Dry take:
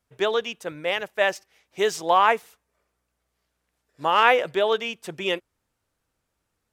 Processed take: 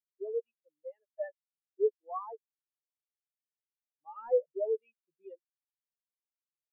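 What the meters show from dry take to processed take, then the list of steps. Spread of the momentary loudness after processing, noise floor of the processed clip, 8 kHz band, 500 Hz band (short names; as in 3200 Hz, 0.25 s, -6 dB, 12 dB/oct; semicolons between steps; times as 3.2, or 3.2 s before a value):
20 LU, under -85 dBFS, under -40 dB, -9.0 dB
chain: soft clip -20 dBFS, distortion -8 dB; spectral expander 4:1; gain +2 dB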